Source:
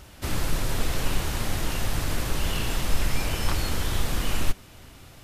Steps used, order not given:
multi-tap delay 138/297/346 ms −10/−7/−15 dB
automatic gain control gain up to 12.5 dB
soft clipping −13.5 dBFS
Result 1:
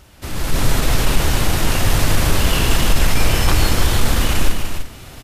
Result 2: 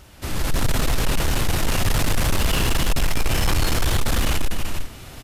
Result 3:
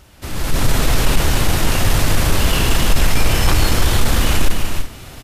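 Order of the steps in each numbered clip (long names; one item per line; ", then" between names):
soft clipping, then multi-tap delay, then automatic gain control
multi-tap delay, then automatic gain control, then soft clipping
multi-tap delay, then soft clipping, then automatic gain control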